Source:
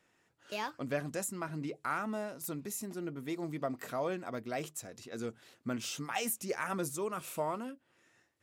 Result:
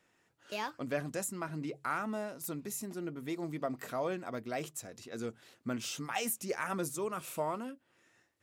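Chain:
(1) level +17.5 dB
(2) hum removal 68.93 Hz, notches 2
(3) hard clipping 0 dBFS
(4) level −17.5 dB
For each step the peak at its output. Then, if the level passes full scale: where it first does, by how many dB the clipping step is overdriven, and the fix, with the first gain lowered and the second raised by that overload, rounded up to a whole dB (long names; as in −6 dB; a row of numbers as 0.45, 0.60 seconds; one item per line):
−2.0, −2.0, −2.0, −19.5 dBFS
no step passes full scale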